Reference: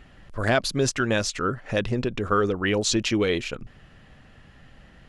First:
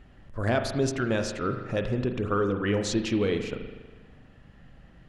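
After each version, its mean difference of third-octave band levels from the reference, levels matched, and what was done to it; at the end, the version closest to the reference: 4.5 dB: tilt shelf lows +3.5 dB; spring tank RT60 1.3 s, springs 40 ms, chirp 45 ms, DRR 6 dB; gain -5.5 dB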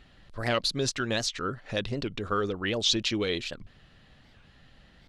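2.0 dB: bell 4000 Hz +10 dB 0.67 oct; record warp 78 rpm, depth 250 cents; gain -6.5 dB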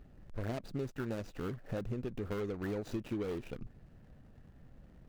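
6.0 dB: median filter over 41 samples; compressor 4:1, threshold -30 dBFS, peak gain reduction 10 dB; gain -5 dB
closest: second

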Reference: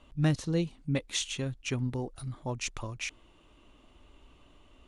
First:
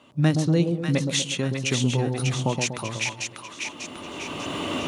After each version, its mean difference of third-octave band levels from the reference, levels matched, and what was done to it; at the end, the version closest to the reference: 10.5 dB: recorder AGC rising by 16 dB/s; HPF 120 Hz 24 dB/oct; on a send: split-band echo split 870 Hz, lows 0.121 s, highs 0.594 s, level -4.5 dB; on the sum: gain +6.5 dB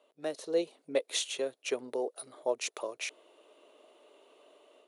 6.0 dB: thirty-one-band EQ 630 Hz +8 dB, 4000 Hz +4 dB, 10000 Hz +10 dB; AGC gain up to 8.5 dB; ladder high-pass 390 Hz, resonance 60%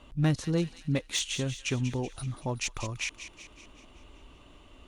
4.0 dB: in parallel at -1.5 dB: compressor 10:1, threshold -39 dBFS, peak gain reduction 18 dB; on the sum: one-sided clip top -22.5 dBFS; thin delay 0.189 s, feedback 54%, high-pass 1800 Hz, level -10 dB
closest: third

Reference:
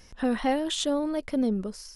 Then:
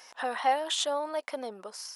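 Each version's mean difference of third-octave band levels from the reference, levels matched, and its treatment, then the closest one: 6.5 dB: in parallel at +1 dB: compressor, threshold -38 dBFS, peak gain reduction 16.5 dB; on the sum: resonant high-pass 800 Hz, resonance Q 1.9; gain -2.5 dB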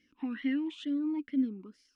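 9.0 dB: dynamic EQ 2000 Hz, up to +5 dB, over -47 dBFS, Q 1.1; vowel sweep i-u 2.2 Hz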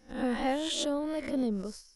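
4.5 dB: spectral swells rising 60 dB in 0.53 s; gate -39 dBFS, range -10 dB; gain -5 dB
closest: third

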